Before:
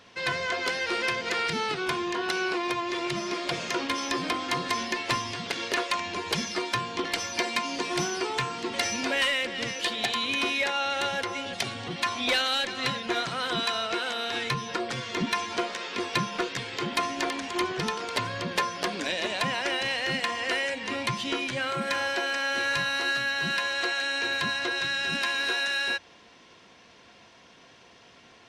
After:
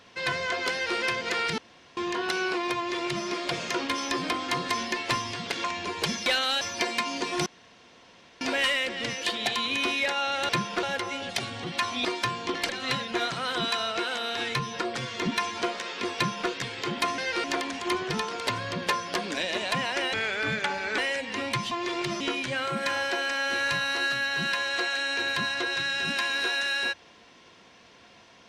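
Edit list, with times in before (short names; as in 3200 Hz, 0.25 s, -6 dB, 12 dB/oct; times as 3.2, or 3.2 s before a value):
0.72–0.98 copy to 17.13
1.58–1.97 room tone
2.77–3.26 copy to 21.25
5.64–5.93 cut
6.55–7.19 swap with 12.29–12.64
8.04–8.99 room tone
16.11–16.45 copy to 11.07
19.82–20.52 speed 82%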